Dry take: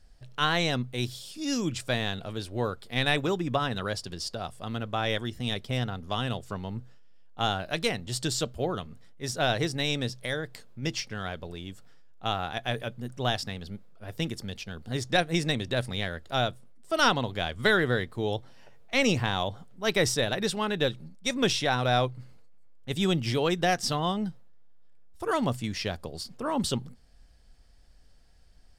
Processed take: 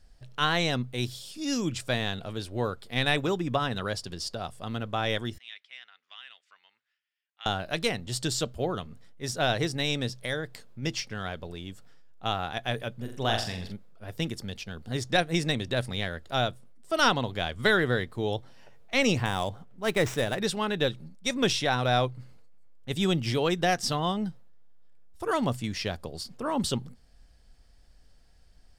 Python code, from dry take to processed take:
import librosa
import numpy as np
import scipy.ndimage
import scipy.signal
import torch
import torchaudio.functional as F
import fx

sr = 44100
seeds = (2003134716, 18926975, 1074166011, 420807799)

y = fx.ladder_bandpass(x, sr, hz=2500.0, resonance_pct=40, at=(5.38, 7.46))
y = fx.room_flutter(y, sr, wall_m=7.5, rt60_s=0.48, at=(13.0, 13.72), fade=0.02)
y = fx.median_filter(y, sr, points=9, at=(19.25, 20.39))